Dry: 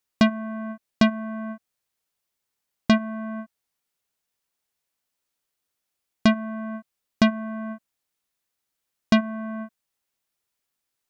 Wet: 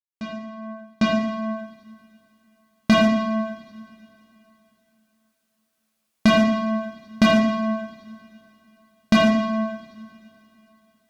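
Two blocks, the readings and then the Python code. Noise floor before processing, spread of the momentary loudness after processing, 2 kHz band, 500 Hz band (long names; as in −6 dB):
−82 dBFS, 19 LU, +4.0 dB, +7.0 dB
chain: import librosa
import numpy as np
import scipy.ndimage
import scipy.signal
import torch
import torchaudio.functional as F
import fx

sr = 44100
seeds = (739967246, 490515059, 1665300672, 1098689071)

y = fx.fade_in_head(x, sr, length_s=1.99)
y = fx.rev_double_slope(y, sr, seeds[0], early_s=0.9, late_s=3.4, knee_db=-21, drr_db=-5.5)
y = fx.clip_asym(y, sr, top_db=-11.0, bottom_db=-10.0)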